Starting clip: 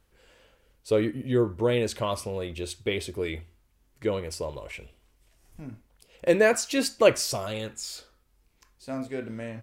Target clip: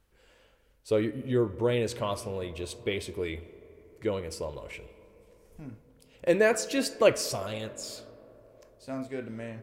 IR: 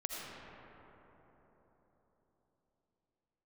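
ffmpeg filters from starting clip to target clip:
-filter_complex "[0:a]asplit=2[a][b];[1:a]atrim=start_sample=2205,lowpass=3.6k[c];[b][c]afir=irnorm=-1:irlink=0,volume=-16.5dB[d];[a][d]amix=inputs=2:normalize=0,volume=-3.5dB"

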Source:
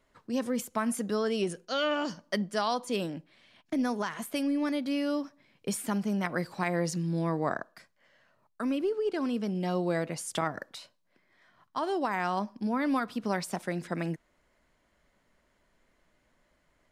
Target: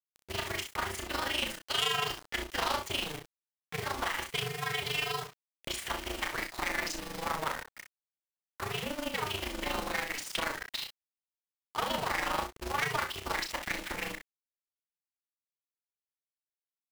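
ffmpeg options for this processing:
-filter_complex "[0:a]anlmdn=0.00251,lowpass=5.5k,equalizer=f=2.6k:t=o:w=1.8:g=12,aecho=1:1:1:0.51,acrossover=split=470[a][b];[a]acompressor=threshold=-41dB:ratio=8[c];[b]alimiter=limit=-17dB:level=0:latency=1:release=136[d];[c][d]amix=inputs=2:normalize=0,acrusher=bits=6:mix=0:aa=0.000001,asoftclip=type=tanh:threshold=-26.5dB,tremolo=f=25:d=0.824,aecho=1:1:33|62:0.473|0.335,aeval=exprs='val(0)*sgn(sin(2*PI*150*n/s))':c=same,volume=2.5dB"

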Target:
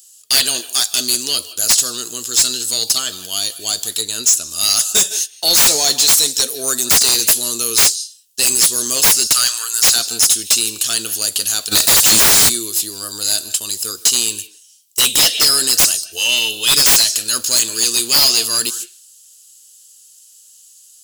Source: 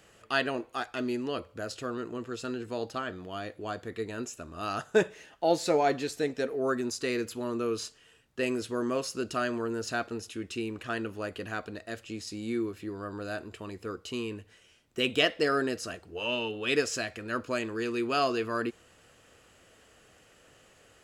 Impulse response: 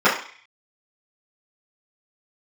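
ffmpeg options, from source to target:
-filter_complex "[0:a]agate=range=-21dB:threshold=-47dB:ratio=16:detection=peak,crystalizer=i=7.5:c=0,asplit=2[a][b];[1:a]atrim=start_sample=2205,asetrate=74970,aresample=44100,adelay=150[c];[b][c]afir=irnorm=-1:irlink=0,volume=-36dB[d];[a][d]amix=inputs=2:normalize=0,aexciter=amount=15.6:drive=3.3:freq=3.3k,asettb=1/sr,asplit=3[e][f][g];[e]atrim=end=4.014[h];[f]atrim=start=4.01:end=4.51,asetpts=PTS-STARTPTS,afade=t=in:d=0.004:c=qsin,afade=t=out:st=0.496:d=0.004:c=qsin,highshelf=f=6.5k:g=-9[i];[g]atrim=start=4.506[j];[h][i]acrossfade=d=0.004:c1=hsin:c2=qsin[k];[k][j]acrossfade=d=0.004:c1=qsin:c2=hsin,asettb=1/sr,asplit=3[l][m][n];[l]atrim=end=9.274[o];[m]atrim=start=9.27:end=9.96,asetpts=PTS-STARTPTS,afade=t=in:d=0.004:c=qsin,afade=t=out:st=0.686:d=0.004:c=qsin,highpass=f=1.3k:t=q:w=1.6[p];[n]atrim=start=9.956[q];[o][p]acrossfade=d=0.004:c1=hsin:c2=qsin[r];[r][q]acrossfade=d=0.004:c1=qsin:c2=hsin,acontrast=71,asplit=3[s][t][u];[s]afade=t=out:st=11.71:d=0.02[v];[t]aeval=exprs='1*sin(PI/2*4.47*val(0)/1)':c=same,afade=t=in:st=11.71:d=0.02,afade=t=out:st=12.48:d=0.02[w];[u]afade=t=in:st=12.48:d=0.02[x];[v][w][x]amix=inputs=3:normalize=0,volume=-6.5dB"

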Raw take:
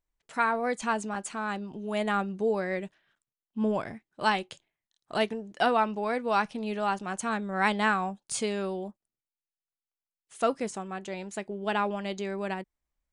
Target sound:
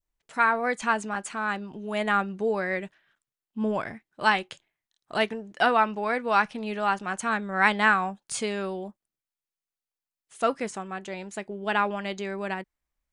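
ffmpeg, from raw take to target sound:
-af "adynamicequalizer=threshold=0.01:dfrequency=1700:dqfactor=0.85:tfrequency=1700:tqfactor=0.85:attack=5:release=100:ratio=0.375:range=3.5:mode=boostabove:tftype=bell"

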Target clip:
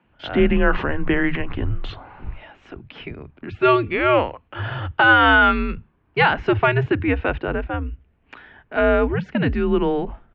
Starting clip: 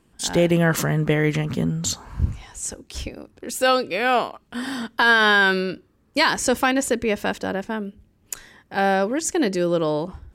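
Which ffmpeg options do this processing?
-filter_complex "[0:a]highpass=f=150:t=q:w=0.5412,highpass=f=150:t=q:w=1.307,lowpass=f=3.1k:t=q:w=0.5176,lowpass=f=3.1k:t=q:w=0.7071,lowpass=f=3.1k:t=q:w=1.932,afreqshift=-140,acrossover=split=160[a][b];[a]adelay=40[c];[c][b]amix=inputs=2:normalize=0,volume=3dB"

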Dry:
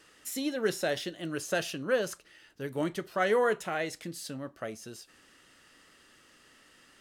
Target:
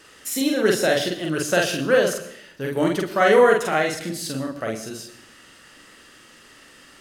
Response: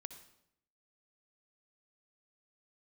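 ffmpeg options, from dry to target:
-filter_complex "[0:a]asplit=2[a][b];[1:a]atrim=start_sample=2205,adelay=45[c];[b][c]afir=irnorm=-1:irlink=0,volume=3.5dB[d];[a][d]amix=inputs=2:normalize=0,volume=8.5dB"

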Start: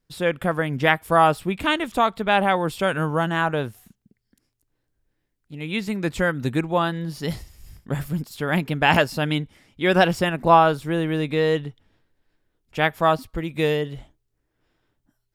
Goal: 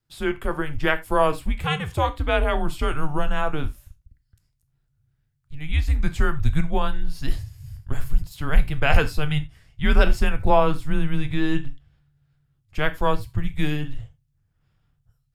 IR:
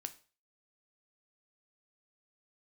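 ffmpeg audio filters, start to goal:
-filter_complex "[0:a]afreqshift=-150,asubboost=boost=4.5:cutoff=130[a];[1:a]atrim=start_sample=2205,atrim=end_sample=4410[b];[a][b]afir=irnorm=-1:irlink=0"

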